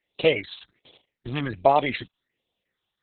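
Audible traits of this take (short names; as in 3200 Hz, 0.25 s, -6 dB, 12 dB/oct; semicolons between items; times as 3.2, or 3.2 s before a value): phasing stages 6, 1.3 Hz, lowest notch 520–1800 Hz; Opus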